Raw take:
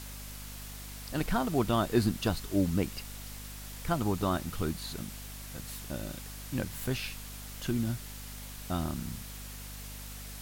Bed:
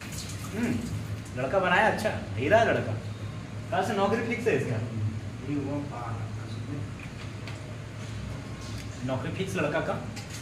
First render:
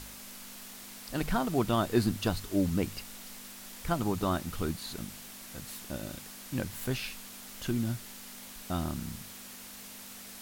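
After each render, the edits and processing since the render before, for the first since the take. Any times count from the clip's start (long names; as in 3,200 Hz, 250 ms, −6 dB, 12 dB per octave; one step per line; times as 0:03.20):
hum removal 50 Hz, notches 3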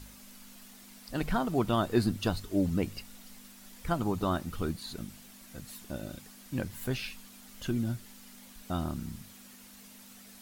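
broadband denoise 8 dB, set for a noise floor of −47 dBFS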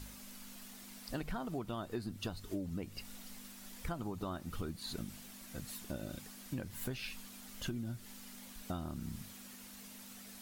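downward compressor 12 to 1, threshold −36 dBFS, peak gain reduction 16.5 dB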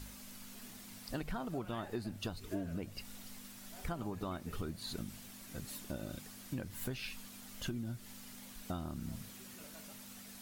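mix in bed −30.5 dB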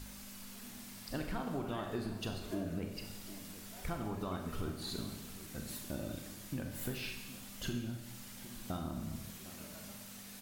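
slap from a distant wall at 130 metres, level −15 dB
four-comb reverb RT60 1 s, combs from 29 ms, DRR 3.5 dB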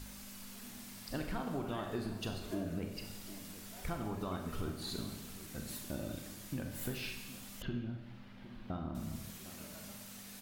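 0:07.62–0:08.95: high-frequency loss of the air 360 metres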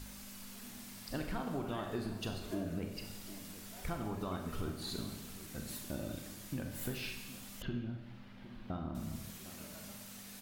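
no processing that can be heard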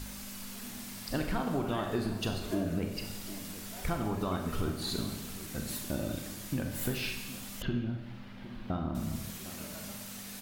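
level +6.5 dB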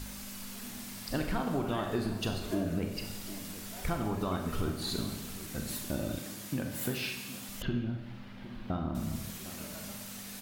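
0:06.19–0:07.49: high-pass filter 110 Hz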